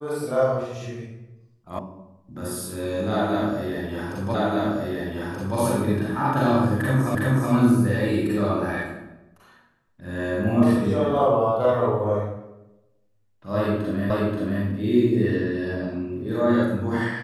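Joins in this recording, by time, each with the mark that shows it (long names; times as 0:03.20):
0:01.79: cut off before it has died away
0:04.34: the same again, the last 1.23 s
0:07.15: the same again, the last 0.37 s
0:14.10: the same again, the last 0.53 s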